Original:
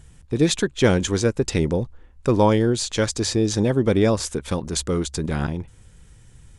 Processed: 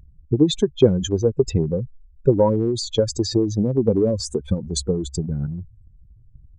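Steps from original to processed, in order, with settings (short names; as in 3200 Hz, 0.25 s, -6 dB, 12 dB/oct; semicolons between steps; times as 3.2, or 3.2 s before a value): spectral contrast raised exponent 2.7; downsampling 22050 Hz; transient shaper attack +8 dB, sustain +3 dB; gain -2 dB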